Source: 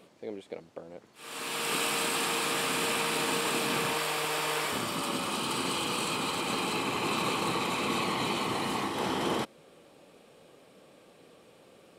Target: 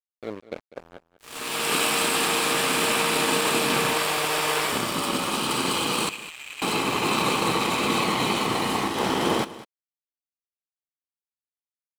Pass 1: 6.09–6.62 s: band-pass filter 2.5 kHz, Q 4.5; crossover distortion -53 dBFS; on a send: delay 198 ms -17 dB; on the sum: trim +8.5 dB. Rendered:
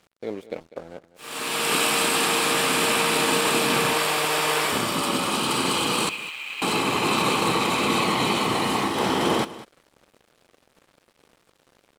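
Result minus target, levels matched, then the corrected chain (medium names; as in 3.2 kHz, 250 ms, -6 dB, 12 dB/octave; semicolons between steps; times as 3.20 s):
crossover distortion: distortion -10 dB
6.09–6.62 s: band-pass filter 2.5 kHz, Q 4.5; crossover distortion -42 dBFS; on a send: delay 198 ms -17 dB; on the sum: trim +8.5 dB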